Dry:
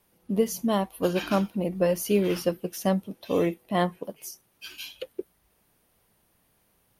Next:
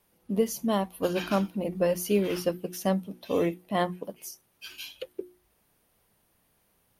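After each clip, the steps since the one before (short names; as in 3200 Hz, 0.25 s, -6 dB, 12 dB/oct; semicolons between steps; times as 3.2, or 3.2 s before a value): notches 60/120/180/240/300/360 Hz; gain -1.5 dB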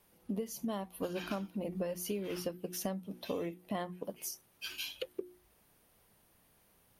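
compressor 10:1, threshold -35 dBFS, peak gain reduction 16.5 dB; gain +1 dB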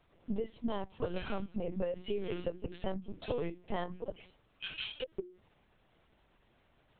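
LPC vocoder at 8 kHz pitch kept; gain +2 dB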